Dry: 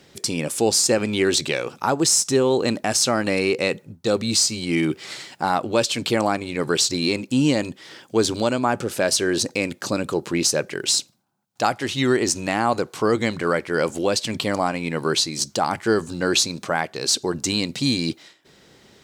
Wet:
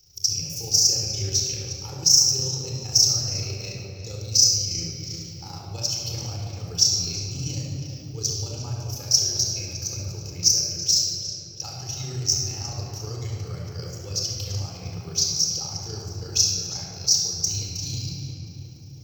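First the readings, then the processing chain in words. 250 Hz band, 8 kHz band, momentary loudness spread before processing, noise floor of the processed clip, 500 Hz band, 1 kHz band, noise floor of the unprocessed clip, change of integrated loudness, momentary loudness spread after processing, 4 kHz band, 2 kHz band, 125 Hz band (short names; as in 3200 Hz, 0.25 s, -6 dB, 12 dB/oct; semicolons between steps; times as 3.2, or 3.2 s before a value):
-17.0 dB, +2.5 dB, 6 LU, -40 dBFS, -19.0 dB, -20.0 dB, -54 dBFS, -1.0 dB, 17 LU, +2.0 dB, -20.0 dB, +1.5 dB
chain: EQ curve 100 Hz 0 dB, 250 Hz -21 dB, 1200 Hz -24 dB, 1800 Hz -29 dB, 2700 Hz -16 dB, 3800 Hz -18 dB, 5700 Hz +11 dB, 9100 Hz -26 dB, 15000 Hz +11 dB; darkening echo 0.343 s, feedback 65%, low-pass 3000 Hz, level -8 dB; AM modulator 28 Hz, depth 45%; bell 240 Hz -7 dB 0.7 oct; shoebox room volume 3600 m³, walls mixed, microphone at 4.1 m; gain -1 dB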